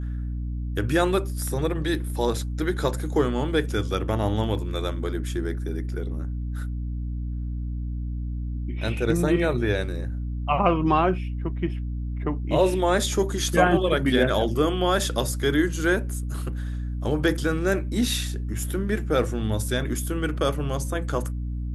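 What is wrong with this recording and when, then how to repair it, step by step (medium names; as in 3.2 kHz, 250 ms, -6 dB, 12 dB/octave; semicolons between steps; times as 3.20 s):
hum 60 Hz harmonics 5 -29 dBFS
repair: de-hum 60 Hz, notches 5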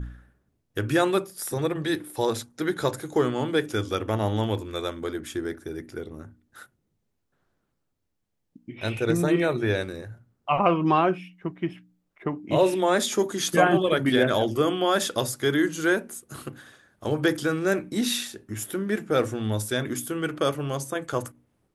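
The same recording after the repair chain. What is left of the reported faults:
nothing left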